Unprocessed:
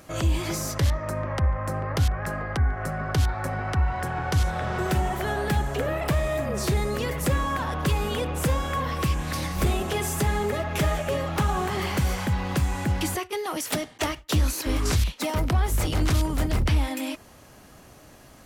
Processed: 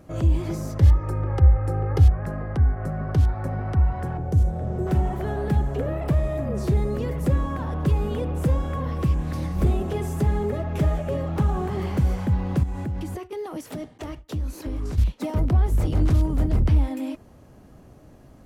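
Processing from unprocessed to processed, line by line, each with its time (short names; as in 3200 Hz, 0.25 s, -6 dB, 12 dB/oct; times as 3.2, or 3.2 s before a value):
0.82–2.1 comb 2.4 ms, depth 98%
4.17–4.87 band shelf 2100 Hz -11 dB 2.8 oct
12.63–14.98 compressor 10:1, threshold -27 dBFS
whole clip: tilt shelf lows +8.5 dB, about 860 Hz; gain -4.5 dB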